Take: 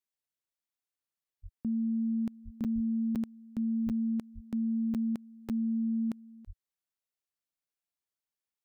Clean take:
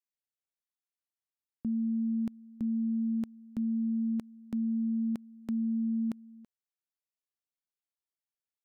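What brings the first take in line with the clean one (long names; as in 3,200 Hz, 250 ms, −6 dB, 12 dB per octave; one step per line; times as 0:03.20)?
high-pass at the plosives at 0:01.42/0:02.44/0:02.74/0:03.85/0:04.34/0:06.46
repair the gap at 0:01.24/0:02.64/0:03.15/0:03.89/0:04.94/0:05.49, 7.8 ms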